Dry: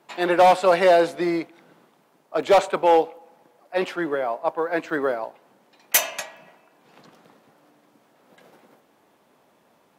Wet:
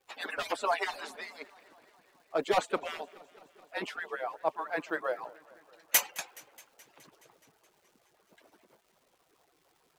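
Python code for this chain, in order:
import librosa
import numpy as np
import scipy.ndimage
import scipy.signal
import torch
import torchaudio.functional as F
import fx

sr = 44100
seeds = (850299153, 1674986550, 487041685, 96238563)

y = fx.hpss_only(x, sr, part='percussive')
y = fx.dmg_crackle(y, sr, seeds[0], per_s=460.0, level_db=-52.0)
y = fx.echo_warbled(y, sr, ms=211, feedback_pct=72, rate_hz=2.8, cents=120, wet_db=-23)
y = F.gain(torch.from_numpy(y), -6.0).numpy()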